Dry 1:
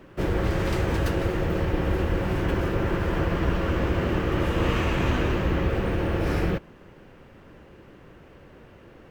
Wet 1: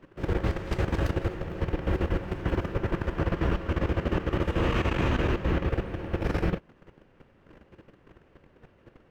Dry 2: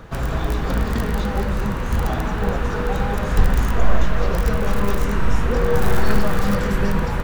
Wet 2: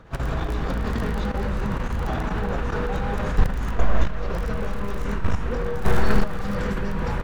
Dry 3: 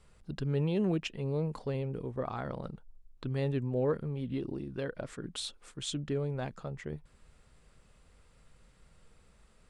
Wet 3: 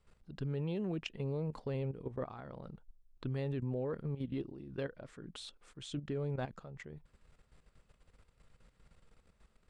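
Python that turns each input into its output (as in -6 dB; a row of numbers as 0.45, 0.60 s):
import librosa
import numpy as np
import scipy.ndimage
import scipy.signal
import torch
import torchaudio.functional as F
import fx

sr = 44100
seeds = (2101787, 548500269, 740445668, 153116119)

y = fx.high_shelf(x, sr, hz=8500.0, db=-10.0)
y = fx.level_steps(y, sr, step_db=12)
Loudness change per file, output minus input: -3.5, -4.5, -5.0 LU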